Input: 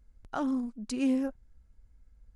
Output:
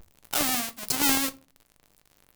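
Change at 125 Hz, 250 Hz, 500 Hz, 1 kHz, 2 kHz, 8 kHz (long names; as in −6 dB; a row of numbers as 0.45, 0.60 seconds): can't be measured, −4.0 dB, 0.0 dB, +8.0 dB, +15.0 dB, +22.5 dB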